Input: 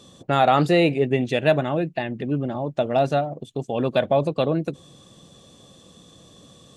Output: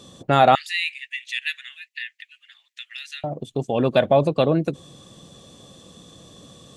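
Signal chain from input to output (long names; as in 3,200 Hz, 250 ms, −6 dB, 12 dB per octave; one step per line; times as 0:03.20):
0:00.55–0:03.24: Chebyshev high-pass filter 1,800 Hz, order 5
level +3 dB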